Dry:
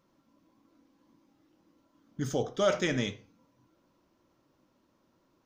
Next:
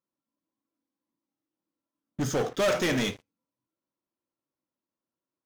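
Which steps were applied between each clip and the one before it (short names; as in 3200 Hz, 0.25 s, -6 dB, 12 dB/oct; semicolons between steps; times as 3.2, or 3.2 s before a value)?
low shelf 87 Hz -10.5 dB; sample leveller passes 5; upward expander 1.5:1, over -27 dBFS; gain -6.5 dB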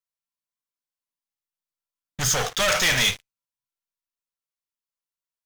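passive tone stack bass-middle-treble 10-0-10; sample leveller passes 3; gain +6.5 dB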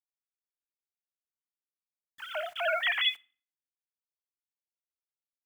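sine-wave speech; bit-crush 8-bit; reverb RT60 0.45 s, pre-delay 4 ms, DRR 19 dB; gain -8.5 dB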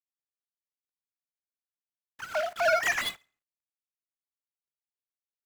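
median filter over 15 samples; gain +6.5 dB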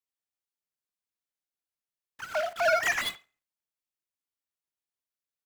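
speakerphone echo 90 ms, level -21 dB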